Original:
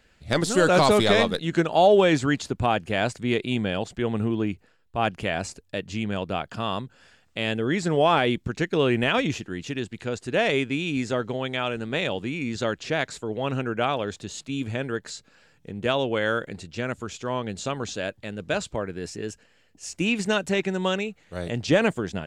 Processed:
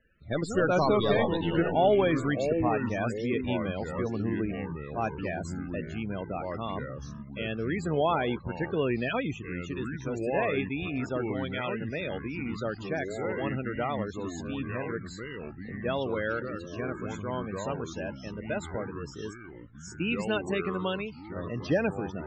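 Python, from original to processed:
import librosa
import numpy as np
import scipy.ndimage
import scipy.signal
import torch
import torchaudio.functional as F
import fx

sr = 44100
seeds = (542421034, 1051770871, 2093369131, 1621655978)

y = fx.spec_topn(x, sr, count=32)
y = fx.echo_pitch(y, sr, ms=158, semitones=-4, count=3, db_per_echo=-6.0)
y = y * librosa.db_to_amplitude(-6.0)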